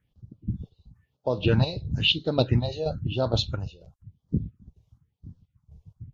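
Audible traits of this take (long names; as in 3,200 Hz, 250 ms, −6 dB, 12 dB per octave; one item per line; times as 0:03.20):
chopped level 2.1 Hz, depth 60%, duty 45%
phaser sweep stages 4, 0.99 Hz, lowest notch 230–2,400 Hz
Ogg Vorbis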